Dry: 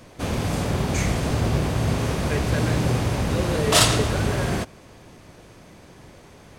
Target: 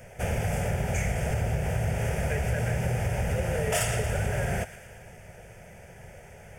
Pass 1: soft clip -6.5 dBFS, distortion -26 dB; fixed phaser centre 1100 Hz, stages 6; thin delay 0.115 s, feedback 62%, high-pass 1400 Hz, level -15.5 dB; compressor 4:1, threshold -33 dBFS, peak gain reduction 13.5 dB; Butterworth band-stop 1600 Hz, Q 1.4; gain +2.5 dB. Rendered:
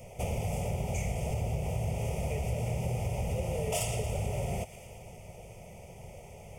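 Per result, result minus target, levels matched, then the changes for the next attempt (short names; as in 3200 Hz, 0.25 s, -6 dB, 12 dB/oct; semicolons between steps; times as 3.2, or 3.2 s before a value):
2000 Hz band -6.5 dB; compressor: peak gain reduction +4.5 dB
remove: Butterworth band-stop 1600 Hz, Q 1.4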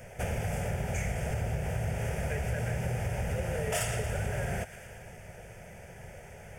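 compressor: peak gain reduction +4.5 dB
change: compressor 4:1, threshold -27 dBFS, peak gain reduction 9 dB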